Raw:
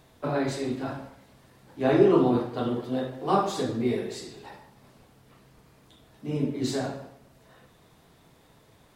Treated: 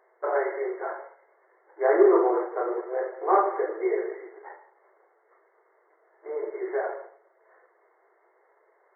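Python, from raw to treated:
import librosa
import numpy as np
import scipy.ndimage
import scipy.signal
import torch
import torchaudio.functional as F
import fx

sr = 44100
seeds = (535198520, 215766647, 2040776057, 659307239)

y = fx.leveller(x, sr, passes=1)
y = fx.brickwall_bandpass(y, sr, low_hz=340.0, high_hz=2200.0)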